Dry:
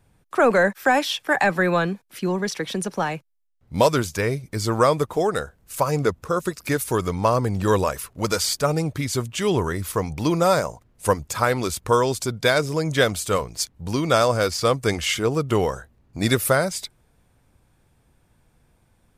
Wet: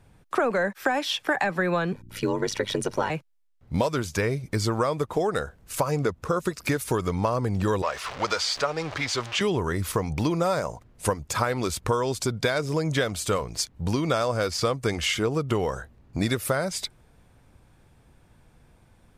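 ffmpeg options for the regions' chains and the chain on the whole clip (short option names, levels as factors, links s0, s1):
-filter_complex "[0:a]asettb=1/sr,asplit=3[s0][s1][s2];[s0]atrim=end=1.924[s3];[s1]atrim=start=1.92:end=3.1,asetpts=PTS-STARTPTS,afade=t=in:d=0.004:c=qsin,afade=t=out:st=1.176:d=0.004:c=qsin,aecho=1:1:2.1:0.76,atrim=end_sample=52038,aeval=exprs='val(0)+0.00501*(sin(2*PI*60*n/s)+sin(2*PI*2*60*n/s)/2+sin(2*PI*3*60*n/s)/3+sin(2*PI*4*60*n/s)/4+sin(2*PI*5*60*n/s)/5)':c=same,aeval=exprs='val(0)*sin(2*PI*49*n/s)':c=same[s4];[s2]atrim=start=3.096[s5];[s3][s4]acrossfade=d=0.004:c1=hsin:c2=qsin[s6];[s6][s5]acrossfade=d=0.004:c1=qsin:c2=hsin,asettb=1/sr,asplit=3[s7][s8][s9];[s7]atrim=end=7.824[s10];[s8]atrim=start=7.82:end=9.41,asetpts=PTS-STARTPTS,afade=t=in:d=0.004:c=qsin,afade=t=out:st=1.586:d=0.004:c=qsin,aeval=exprs='val(0)+0.5*0.0355*sgn(val(0))':c=same,acrossover=split=520 6200:gain=0.158 1 0.0891[s11][s12][s13];[s11][s12][s13]amix=inputs=3:normalize=0[s14];[s9]atrim=start=9.406[s15];[s10][s14]acrossfade=d=0.004:c1=hsin:c2=qsin[s16];[s16][s15]acrossfade=d=0.004:c1=qsin:c2=hsin,acompressor=threshold=0.0501:ratio=6,highshelf=f=8500:g=-8,volume=1.68"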